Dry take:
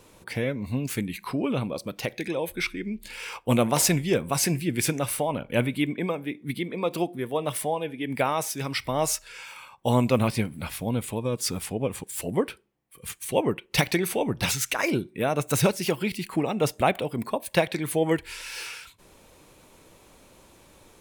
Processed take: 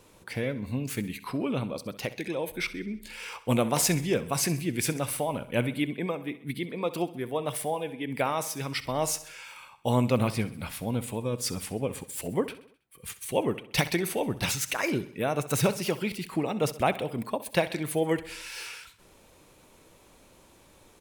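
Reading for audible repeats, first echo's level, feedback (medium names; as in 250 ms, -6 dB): 4, -16.0 dB, 53%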